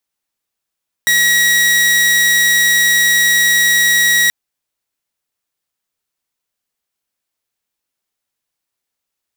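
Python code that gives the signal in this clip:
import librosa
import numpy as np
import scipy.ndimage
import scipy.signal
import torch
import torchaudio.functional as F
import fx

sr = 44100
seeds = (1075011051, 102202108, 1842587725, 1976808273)

y = 10.0 ** (-7.0 / 20.0) * (2.0 * np.mod(1910.0 * (np.arange(round(3.23 * sr)) / sr), 1.0) - 1.0)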